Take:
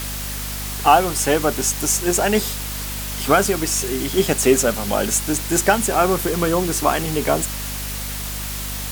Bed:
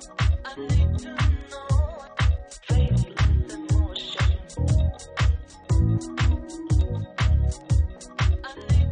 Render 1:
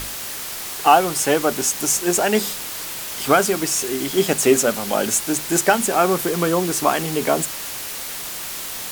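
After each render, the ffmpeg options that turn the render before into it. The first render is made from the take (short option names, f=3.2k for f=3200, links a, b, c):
-af "bandreject=f=50:t=h:w=6,bandreject=f=100:t=h:w=6,bandreject=f=150:t=h:w=6,bandreject=f=200:t=h:w=6,bandreject=f=250:t=h:w=6"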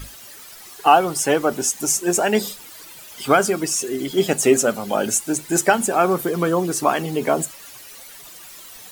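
-af "afftdn=nr=14:nf=-30"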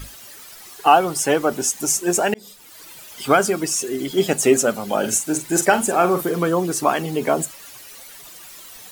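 -filter_complex "[0:a]asettb=1/sr,asplit=3[a][b][c];[a]atrim=end=4.994[d];[b]atrim=start=4.99:end=6.39,asetpts=PTS-STARTPTS,afade=t=in:d=0.004:c=qsin,afade=t=out:st=1.396:d=0.004:c=qsin,asplit=2[e][f];[f]adelay=45,volume=-9.5dB[g];[e][g]amix=inputs=2:normalize=0,atrim=end_sample=61740[h];[c]atrim=start=6.386[i];[d][h]acrossfade=d=0.004:c1=hsin:c2=qsin[j];[j][i]acrossfade=d=0.004:c1=qsin:c2=hsin,asplit=2[k][l];[k]atrim=end=2.34,asetpts=PTS-STARTPTS,afade=t=out:st=2.336:d=0.004:c=hsin[m];[l]atrim=start=2.34,asetpts=PTS-STARTPTS,afade=t=in:d=0.56[n];[m][n]concat=n=2:v=0:a=1"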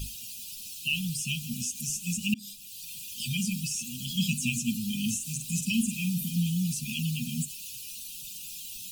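-filter_complex "[0:a]acrossover=split=3000[a][b];[b]acompressor=threshold=-31dB:ratio=4:attack=1:release=60[c];[a][c]amix=inputs=2:normalize=0,afftfilt=real='re*(1-between(b*sr/4096,250,2400))':imag='im*(1-between(b*sr/4096,250,2400))':win_size=4096:overlap=0.75"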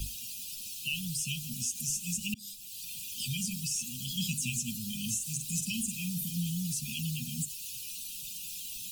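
-filter_complex "[0:a]acrossover=split=150|3000[a][b][c];[b]acompressor=threshold=-51dB:ratio=2.5[d];[a][d][c]amix=inputs=3:normalize=0"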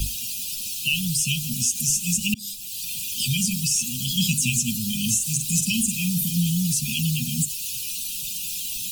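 -af "volume=11dB"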